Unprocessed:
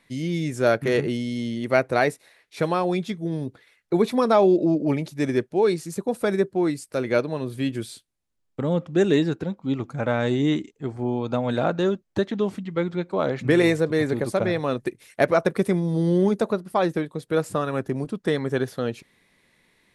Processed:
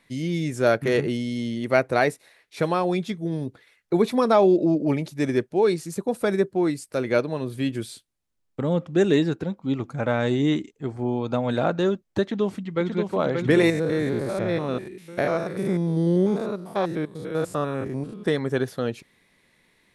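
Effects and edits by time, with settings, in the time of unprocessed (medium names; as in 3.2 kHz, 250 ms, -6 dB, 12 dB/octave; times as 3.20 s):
12.22–13.02 s: echo throw 580 ms, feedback 65%, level -4.5 dB
13.70–18.26 s: spectrogram pixelated in time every 100 ms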